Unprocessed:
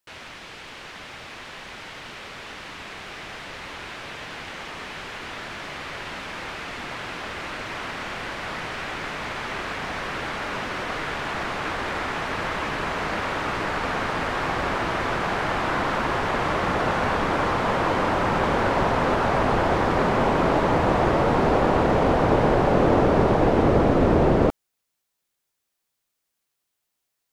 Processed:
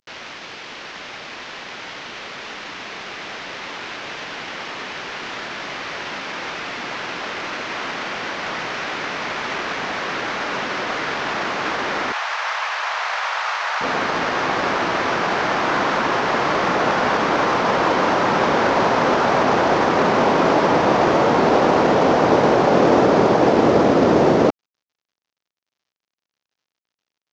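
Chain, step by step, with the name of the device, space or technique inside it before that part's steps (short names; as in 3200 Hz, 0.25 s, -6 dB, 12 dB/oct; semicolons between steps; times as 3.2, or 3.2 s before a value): early wireless headset (HPF 190 Hz 12 dB/oct; CVSD 32 kbps); 12.12–13.81 inverse Chebyshev high-pass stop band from 270 Hz, stop band 50 dB; gain +5.5 dB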